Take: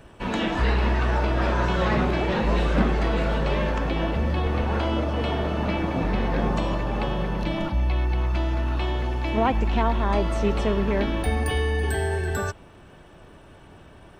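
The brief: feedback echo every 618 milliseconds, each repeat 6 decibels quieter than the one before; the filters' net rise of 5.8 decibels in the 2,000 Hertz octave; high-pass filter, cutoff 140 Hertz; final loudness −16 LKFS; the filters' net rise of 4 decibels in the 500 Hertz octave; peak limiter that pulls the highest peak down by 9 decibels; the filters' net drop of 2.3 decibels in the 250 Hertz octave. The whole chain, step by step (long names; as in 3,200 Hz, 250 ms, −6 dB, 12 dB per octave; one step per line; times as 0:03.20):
high-pass filter 140 Hz
parametric band 250 Hz −4.5 dB
parametric band 500 Hz +6 dB
parametric band 2,000 Hz +7 dB
brickwall limiter −16.5 dBFS
repeating echo 618 ms, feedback 50%, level −6 dB
level +9 dB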